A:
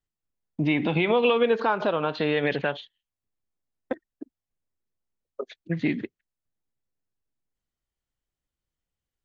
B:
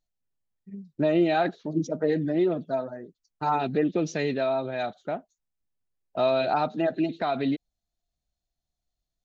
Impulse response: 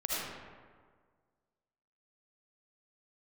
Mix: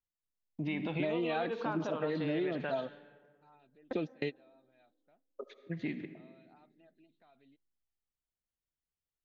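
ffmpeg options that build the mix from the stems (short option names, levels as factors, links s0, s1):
-filter_complex "[0:a]volume=0.251,asplit=3[s0][s1][s2];[s1]volume=0.158[s3];[1:a]acrossover=split=3200[s4][s5];[s5]acompressor=threshold=0.00355:ratio=4:attack=1:release=60[s6];[s4][s6]amix=inputs=2:normalize=0,equalizer=f=3000:w=0.98:g=6.5,volume=0.596[s7];[s2]apad=whole_len=407562[s8];[s7][s8]sidechaingate=range=0.0178:threshold=0.002:ratio=16:detection=peak[s9];[2:a]atrim=start_sample=2205[s10];[s3][s10]afir=irnorm=-1:irlink=0[s11];[s0][s9][s11]amix=inputs=3:normalize=0,acompressor=threshold=0.0316:ratio=6"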